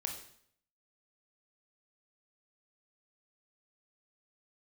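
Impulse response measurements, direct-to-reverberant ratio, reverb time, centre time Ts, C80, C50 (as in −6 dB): 2.5 dB, 0.65 s, 24 ms, 10.0 dB, 6.5 dB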